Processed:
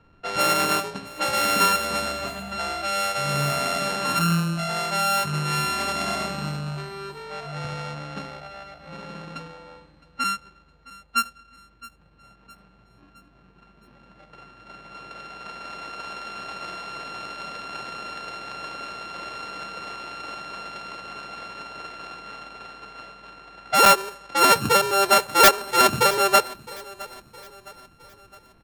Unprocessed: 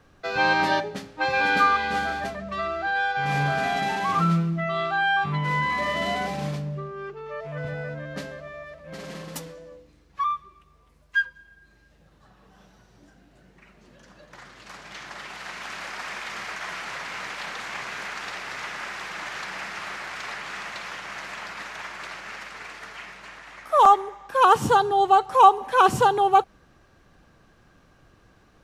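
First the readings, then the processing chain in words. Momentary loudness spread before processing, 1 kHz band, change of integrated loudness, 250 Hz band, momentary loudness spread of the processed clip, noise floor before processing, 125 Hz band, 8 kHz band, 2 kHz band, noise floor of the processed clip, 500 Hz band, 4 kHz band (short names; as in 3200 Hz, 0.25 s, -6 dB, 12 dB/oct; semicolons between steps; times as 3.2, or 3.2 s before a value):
20 LU, -2.5 dB, +1.5 dB, +0.5 dB, 21 LU, -58 dBFS, 0.0 dB, +13.0 dB, -1.5 dB, -56 dBFS, +1.0 dB, +7.5 dB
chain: sample sorter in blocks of 32 samples; low-pass opened by the level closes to 2800 Hz, open at -19 dBFS; wrapped overs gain 5 dB; on a send: feedback echo 0.663 s, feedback 47%, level -20 dB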